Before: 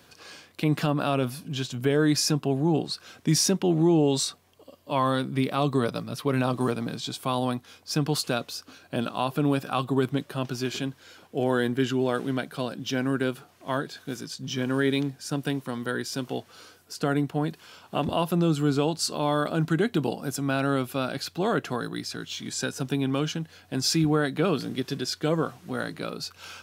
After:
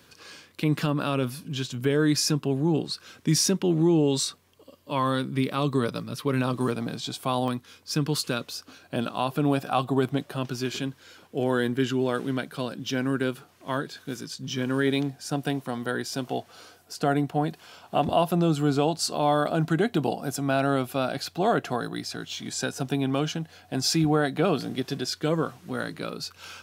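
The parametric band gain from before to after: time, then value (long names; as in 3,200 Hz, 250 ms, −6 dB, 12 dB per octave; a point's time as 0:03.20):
parametric band 710 Hz 0.4 octaves
−7 dB
from 0:06.75 +2.5 dB
from 0:07.48 −9.5 dB
from 0:08.47 +0.5 dB
from 0:09.46 +7 dB
from 0:10.36 −3 dB
from 0:14.87 +7.5 dB
from 0:25.07 −1.5 dB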